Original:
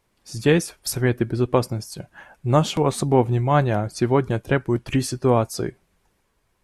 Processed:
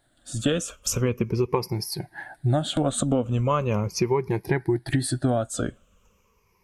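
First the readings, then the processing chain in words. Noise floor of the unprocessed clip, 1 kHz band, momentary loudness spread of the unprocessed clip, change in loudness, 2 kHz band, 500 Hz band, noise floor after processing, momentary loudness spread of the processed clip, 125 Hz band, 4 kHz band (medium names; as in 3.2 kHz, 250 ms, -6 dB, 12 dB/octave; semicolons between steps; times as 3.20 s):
-69 dBFS, -6.0 dB, 11 LU, -4.0 dB, -5.5 dB, -4.5 dB, -66 dBFS, 7 LU, -3.5 dB, -0.5 dB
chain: drifting ripple filter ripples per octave 0.81, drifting -0.39 Hz, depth 17 dB; compression 12:1, threshold -19 dBFS, peak gain reduction 12 dB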